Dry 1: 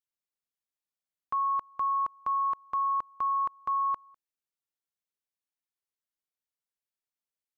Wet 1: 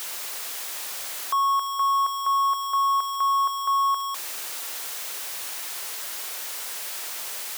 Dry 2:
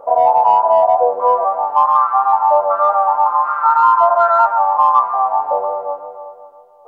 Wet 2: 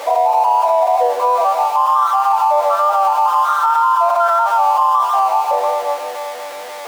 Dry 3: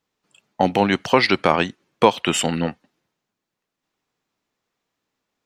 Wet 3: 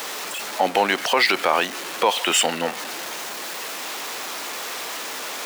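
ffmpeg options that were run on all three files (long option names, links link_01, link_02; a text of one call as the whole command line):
ffmpeg -i in.wav -af "aeval=exprs='val(0)+0.5*0.0501*sgn(val(0))':channel_layout=same,highpass=490,alimiter=limit=-9dB:level=0:latency=1:release=33,volume=2.5dB" out.wav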